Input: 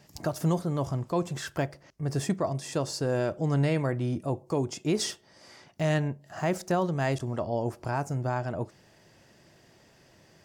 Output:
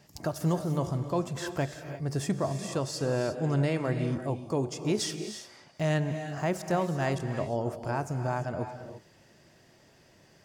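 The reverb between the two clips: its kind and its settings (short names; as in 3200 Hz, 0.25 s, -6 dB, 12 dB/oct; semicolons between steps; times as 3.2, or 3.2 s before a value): non-linear reverb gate 0.37 s rising, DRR 8 dB; gain -1.5 dB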